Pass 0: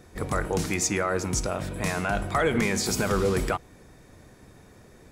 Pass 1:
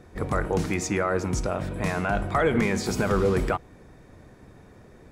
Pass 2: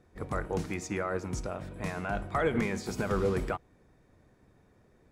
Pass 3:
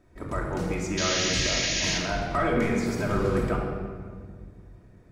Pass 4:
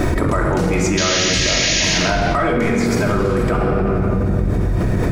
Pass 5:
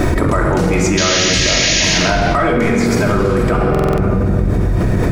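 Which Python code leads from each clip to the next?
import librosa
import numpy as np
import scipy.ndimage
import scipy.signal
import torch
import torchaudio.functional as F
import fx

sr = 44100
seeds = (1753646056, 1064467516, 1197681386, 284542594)

y1 = fx.high_shelf(x, sr, hz=3500.0, db=-11.0)
y1 = y1 * 10.0 ** (2.0 / 20.0)
y2 = fx.upward_expand(y1, sr, threshold_db=-35.0, expansion=1.5)
y2 = y2 * 10.0 ** (-5.0 / 20.0)
y3 = fx.spec_paint(y2, sr, seeds[0], shape='noise', start_s=0.97, length_s=1.01, low_hz=1600.0, high_hz=7000.0, level_db=-31.0)
y3 = fx.room_shoebox(y3, sr, seeds[1], volume_m3=2800.0, walls='mixed', distance_m=2.8)
y4 = fx.env_flatten(y3, sr, amount_pct=100)
y4 = y4 * 10.0 ** (5.0 / 20.0)
y5 = fx.dmg_crackle(y4, sr, seeds[2], per_s=110.0, level_db=-46.0)
y5 = fx.buffer_glitch(y5, sr, at_s=(3.7,), block=2048, repeats=5)
y5 = y5 * 10.0 ** (3.0 / 20.0)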